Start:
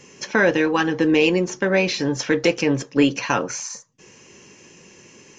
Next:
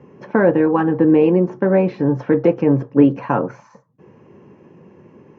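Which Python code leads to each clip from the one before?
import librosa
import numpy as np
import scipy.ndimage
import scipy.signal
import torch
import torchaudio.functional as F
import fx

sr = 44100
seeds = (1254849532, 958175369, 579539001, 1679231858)

y = scipy.signal.sosfilt(scipy.signal.cheby1(2, 1.0, [100.0, 980.0], 'bandpass', fs=sr, output='sos'), x)
y = fx.low_shelf(y, sr, hz=340.0, db=5.5)
y = fx.hum_notches(y, sr, base_hz=60, count=2)
y = F.gain(torch.from_numpy(y), 3.0).numpy()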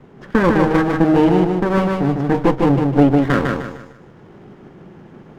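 y = fx.lower_of_two(x, sr, delay_ms=0.59)
y = fx.rider(y, sr, range_db=10, speed_s=2.0)
y = fx.echo_feedback(y, sr, ms=152, feedback_pct=36, wet_db=-3.5)
y = F.gain(torch.from_numpy(y), -1.0).numpy()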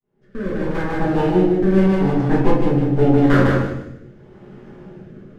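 y = fx.fade_in_head(x, sr, length_s=1.41)
y = fx.rotary(y, sr, hz=0.8)
y = fx.room_shoebox(y, sr, seeds[0], volume_m3=89.0, walls='mixed', distance_m=1.3)
y = F.gain(torch.from_numpy(y), -5.0).numpy()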